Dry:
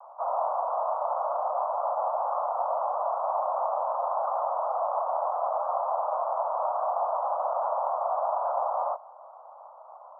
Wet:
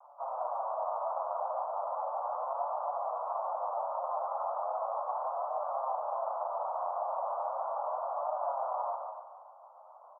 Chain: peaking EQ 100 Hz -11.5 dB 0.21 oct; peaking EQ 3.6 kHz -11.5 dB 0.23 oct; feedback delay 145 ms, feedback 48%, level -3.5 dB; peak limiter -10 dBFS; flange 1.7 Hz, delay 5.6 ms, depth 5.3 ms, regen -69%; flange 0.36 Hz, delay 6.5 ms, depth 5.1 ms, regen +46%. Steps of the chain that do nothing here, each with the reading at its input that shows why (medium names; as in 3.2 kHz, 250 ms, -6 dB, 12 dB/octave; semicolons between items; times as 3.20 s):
peaking EQ 100 Hz: input has nothing below 450 Hz; peaking EQ 3.6 kHz: input has nothing above 1.4 kHz; peak limiter -10 dBFS: peak at its input -12.5 dBFS